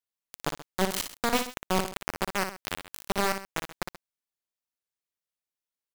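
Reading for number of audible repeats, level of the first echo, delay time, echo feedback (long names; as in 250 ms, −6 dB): 2, −7.5 dB, 58 ms, repeats not evenly spaced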